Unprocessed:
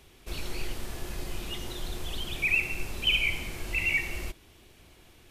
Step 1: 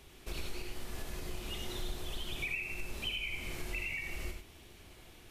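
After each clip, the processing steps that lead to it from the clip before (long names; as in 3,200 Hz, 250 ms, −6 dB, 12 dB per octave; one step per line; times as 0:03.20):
downward compressor 10 to 1, threshold −35 dBFS, peak gain reduction 14.5 dB
reverb whose tail is shaped and stops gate 120 ms rising, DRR 3.5 dB
level −1 dB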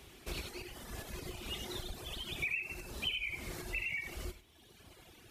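high-pass filter 45 Hz
reverb reduction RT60 1.6 s
level +2.5 dB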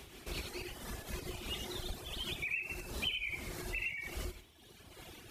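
in parallel at 0 dB: downward compressor, threshold −48 dBFS, peak gain reduction 15.5 dB
on the sum: amplitude modulation by smooth noise, depth 65%
level +1.5 dB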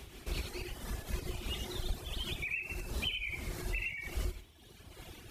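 low-shelf EQ 110 Hz +8.5 dB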